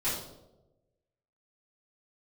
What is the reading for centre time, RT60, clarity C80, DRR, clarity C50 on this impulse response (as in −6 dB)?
52 ms, 1.0 s, 6.0 dB, −13.0 dB, 2.5 dB